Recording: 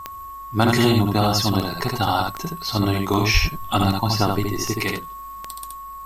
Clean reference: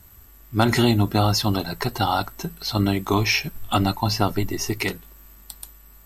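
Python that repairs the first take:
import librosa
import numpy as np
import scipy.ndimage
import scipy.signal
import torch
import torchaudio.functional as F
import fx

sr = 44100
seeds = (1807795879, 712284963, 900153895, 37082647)

y = fx.fix_declick_ar(x, sr, threshold=10.0)
y = fx.notch(y, sr, hz=1100.0, q=30.0)
y = fx.fix_deplosive(y, sr, at_s=(3.33,))
y = fx.fix_echo_inverse(y, sr, delay_ms=73, level_db=-3.5)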